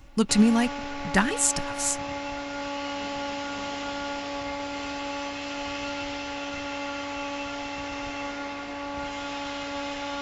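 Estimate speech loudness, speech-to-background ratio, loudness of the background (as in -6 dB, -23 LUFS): -24.0 LUFS, 9.0 dB, -33.0 LUFS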